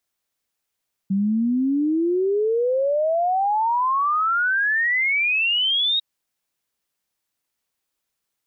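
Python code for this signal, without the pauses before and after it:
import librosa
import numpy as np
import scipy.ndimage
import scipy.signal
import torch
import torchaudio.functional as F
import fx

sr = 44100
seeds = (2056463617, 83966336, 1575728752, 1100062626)

y = fx.ess(sr, length_s=4.9, from_hz=190.0, to_hz=3800.0, level_db=-17.5)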